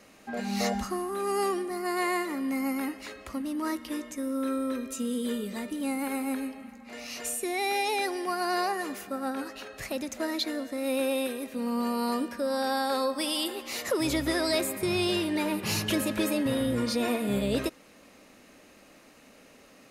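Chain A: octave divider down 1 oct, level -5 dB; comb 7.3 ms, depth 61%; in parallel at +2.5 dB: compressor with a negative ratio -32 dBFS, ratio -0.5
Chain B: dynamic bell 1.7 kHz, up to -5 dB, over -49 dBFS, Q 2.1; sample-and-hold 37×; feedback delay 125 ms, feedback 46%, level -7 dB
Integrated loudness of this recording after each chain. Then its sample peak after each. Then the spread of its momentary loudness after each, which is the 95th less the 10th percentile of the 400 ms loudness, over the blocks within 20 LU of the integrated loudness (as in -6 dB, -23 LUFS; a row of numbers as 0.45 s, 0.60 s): -24.0 LUFS, -30.0 LUFS; -10.5 dBFS, -15.5 dBFS; 8 LU, 9 LU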